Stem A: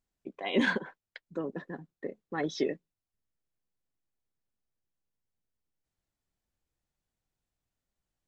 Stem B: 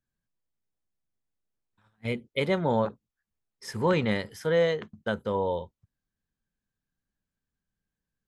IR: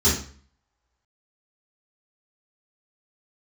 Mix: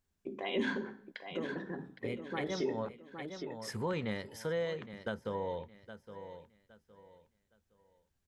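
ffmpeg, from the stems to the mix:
-filter_complex "[0:a]volume=1.19,asplit=4[s0][s1][s2][s3];[s1]volume=0.0631[s4];[s2]volume=0.237[s5];[1:a]volume=0.708,asplit=2[s6][s7];[s7]volume=0.133[s8];[s3]apad=whole_len=365050[s9];[s6][s9]sidechaincompress=threshold=0.0251:ratio=8:attack=16:release=224[s10];[2:a]atrim=start_sample=2205[s11];[s4][s11]afir=irnorm=-1:irlink=0[s12];[s5][s8]amix=inputs=2:normalize=0,aecho=0:1:814|1628|2442|3256:1|0.27|0.0729|0.0197[s13];[s0][s10][s12][s13]amix=inputs=4:normalize=0,acompressor=threshold=0.0126:ratio=2"

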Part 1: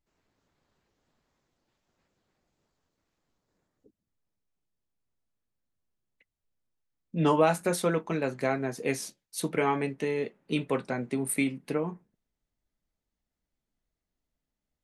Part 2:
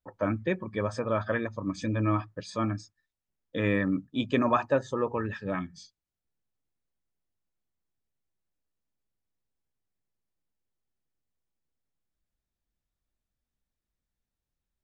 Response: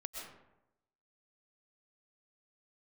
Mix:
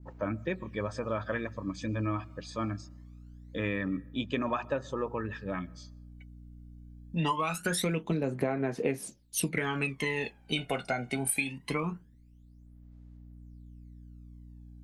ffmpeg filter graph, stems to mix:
-filter_complex "[0:a]aphaser=in_gain=1:out_gain=1:delay=1.4:decay=0.79:speed=0.23:type=sinusoidal,volume=1.19,asplit=2[s0][s1];[1:a]aeval=exprs='val(0)+0.00631*(sin(2*PI*60*n/s)+sin(2*PI*2*60*n/s)/2+sin(2*PI*3*60*n/s)/3+sin(2*PI*4*60*n/s)/4+sin(2*PI*5*60*n/s)/5)':c=same,volume=0.631,asplit=2[s2][s3];[s3]volume=0.0794[s4];[s1]apad=whole_len=654309[s5];[s2][s5]sidechaincompress=threshold=0.01:ratio=3:attack=16:release=1230[s6];[2:a]atrim=start_sample=2205[s7];[s4][s7]afir=irnorm=-1:irlink=0[s8];[s0][s6][s8]amix=inputs=3:normalize=0,adynamicequalizer=threshold=0.00562:dfrequency=2800:dqfactor=1.6:tfrequency=2800:tqfactor=1.6:attack=5:release=100:ratio=0.375:range=3:mode=boostabove:tftype=bell,acompressor=threshold=0.0501:ratio=12"

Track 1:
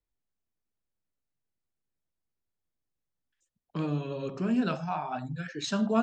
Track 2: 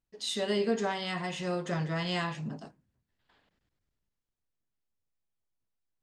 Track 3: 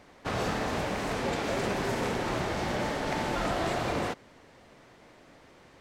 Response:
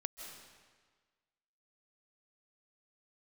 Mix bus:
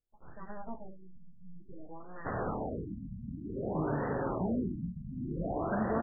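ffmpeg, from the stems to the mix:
-filter_complex "[0:a]acompressor=threshold=0.0447:ratio=6,volume=0.708[s0];[1:a]aeval=exprs='abs(val(0))':c=same,volume=0.299[s1];[2:a]adelay=2000,volume=0.631[s2];[s0][s1][s2]amix=inputs=3:normalize=0,afftfilt=real='re*lt(b*sr/1024,240*pow(2000/240,0.5+0.5*sin(2*PI*0.55*pts/sr)))':imag='im*lt(b*sr/1024,240*pow(2000/240,0.5+0.5*sin(2*PI*0.55*pts/sr)))':win_size=1024:overlap=0.75"

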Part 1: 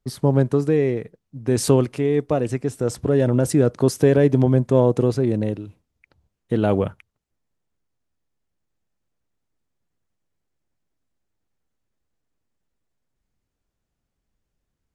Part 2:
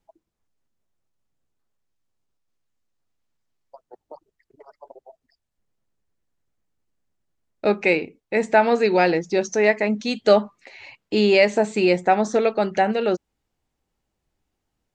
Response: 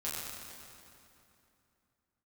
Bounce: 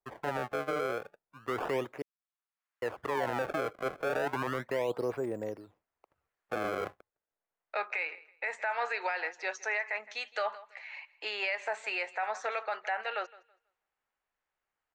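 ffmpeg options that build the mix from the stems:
-filter_complex "[0:a]acrusher=samples=27:mix=1:aa=0.000001:lfo=1:lforange=43.2:lforate=0.33,volume=0.316,asplit=3[s0][s1][s2];[s0]atrim=end=2.02,asetpts=PTS-STARTPTS,afade=t=out:st=2.016:d=0.004:c=hsin[s3];[s1]atrim=start=2.02:end=2.82,asetpts=PTS-STARTPTS,volume=0[s4];[s2]atrim=start=2.82,asetpts=PTS-STARTPTS,afade=t=in:d=0.004:c=hsin[s5];[s3][s4][s5]concat=n=3:v=0:a=1,asplit=2[s6][s7];[1:a]dynaudnorm=f=840:g=7:m=4.73,highpass=1400,acompressor=threshold=0.0631:ratio=6,adelay=100,volume=0.708,asplit=2[s8][s9];[s9]volume=0.0891[s10];[s7]apad=whole_len=663691[s11];[s8][s11]sidechaincompress=threshold=0.00631:ratio=8:attack=47:release=799[s12];[s10]aecho=0:1:163|326|489|652:1|0.22|0.0484|0.0106[s13];[s6][s12][s13]amix=inputs=3:normalize=0,acontrast=47,acrossover=split=450 2100:gain=0.1 1 0.126[s14][s15][s16];[s14][s15][s16]amix=inputs=3:normalize=0,alimiter=limit=0.0708:level=0:latency=1:release=15"

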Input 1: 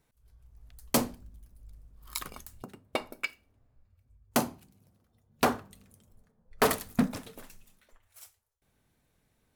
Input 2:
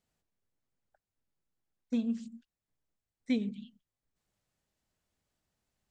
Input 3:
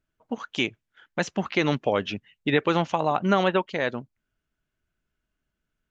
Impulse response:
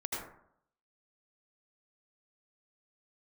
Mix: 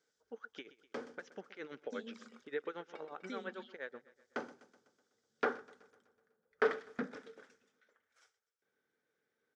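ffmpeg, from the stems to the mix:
-filter_complex "[0:a]volume=0.447,asplit=2[s0][s1];[s1]volume=0.0708[s2];[1:a]acompressor=threshold=0.0112:ratio=2.5,aexciter=amount=4.2:drive=5.5:freq=3300,volume=0.794[s3];[2:a]acompressor=threshold=0.0447:ratio=2,tremolo=f=8.6:d=0.85,volume=0.237,asplit=3[s4][s5][s6];[s5]volume=0.126[s7];[s6]apad=whole_len=421471[s8];[s0][s8]sidechaincompress=threshold=0.00282:ratio=5:attack=8.2:release=636[s9];[s2][s7]amix=inputs=2:normalize=0,aecho=0:1:125|250|375|500|625|750|875|1000|1125:1|0.57|0.325|0.185|0.106|0.0602|0.0343|0.0195|0.0111[s10];[s9][s3][s4][s10]amix=inputs=4:normalize=0,acrossover=split=4000[s11][s12];[s12]acompressor=threshold=0.00158:ratio=4:attack=1:release=60[s13];[s11][s13]amix=inputs=2:normalize=0,highpass=370,equalizer=f=450:t=q:w=4:g=8,equalizer=f=670:t=q:w=4:g=-8,equalizer=f=1000:t=q:w=4:g=-8,equalizer=f=1500:t=q:w=4:g=8,equalizer=f=2700:t=q:w=4:g=-8,equalizer=f=4200:t=q:w=4:g=-8,lowpass=f=5700:w=0.5412,lowpass=f=5700:w=1.3066"

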